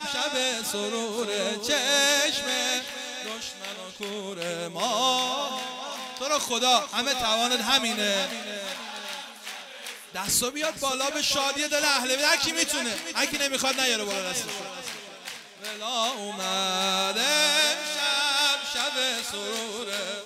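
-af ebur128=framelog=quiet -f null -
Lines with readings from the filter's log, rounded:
Integrated loudness:
  I:         -24.9 LUFS
  Threshold: -35.3 LUFS
Loudness range:
  LRA:         4.9 LU
  Threshold: -45.3 LUFS
  LRA low:   -28.2 LUFS
  LRA high:  -23.3 LUFS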